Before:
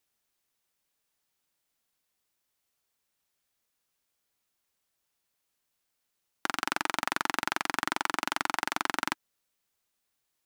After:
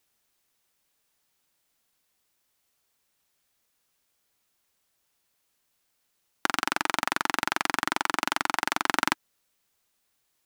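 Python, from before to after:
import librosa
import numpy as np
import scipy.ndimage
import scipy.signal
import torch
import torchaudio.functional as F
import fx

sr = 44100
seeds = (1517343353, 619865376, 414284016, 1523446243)

y = fx.level_steps(x, sr, step_db=11, at=(6.46, 8.88))
y = F.gain(torch.from_numpy(y), 6.0).numpy()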